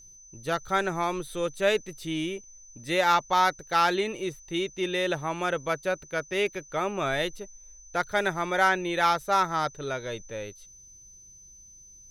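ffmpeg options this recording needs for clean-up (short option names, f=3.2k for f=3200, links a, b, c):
-af "bandreject=f=6.1k:w=30"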